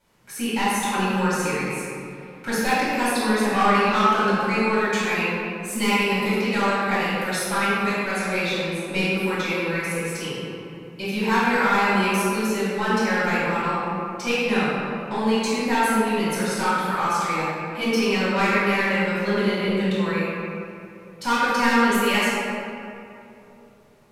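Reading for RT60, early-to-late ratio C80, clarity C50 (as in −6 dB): 2.9 s, −2.0 dB, −4.0 dB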